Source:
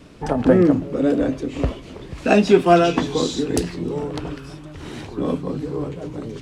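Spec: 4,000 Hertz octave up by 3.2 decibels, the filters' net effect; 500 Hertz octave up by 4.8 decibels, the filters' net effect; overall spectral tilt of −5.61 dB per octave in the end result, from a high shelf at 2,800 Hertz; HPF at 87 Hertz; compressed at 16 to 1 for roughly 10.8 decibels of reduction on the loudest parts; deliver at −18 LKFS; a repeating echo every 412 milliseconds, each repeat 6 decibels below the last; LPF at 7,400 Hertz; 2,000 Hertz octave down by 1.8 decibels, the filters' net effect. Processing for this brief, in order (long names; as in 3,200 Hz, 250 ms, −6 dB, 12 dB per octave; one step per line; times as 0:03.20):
high-pass filter 87 Hz
low-pass filter 7,400 Hz
parametric band 500 Hz +6.5 dB
parametric band 2,000 Hz −4 dB
high-shelf EQ 2,800 Hz −3.5 dB
parametric band 4,000 Hz +8 dB
downward compressor 16 to 1, threshold −14 dBFS
repeating echo 412 ms, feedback 50%, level −6 dB
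level +3.5 dB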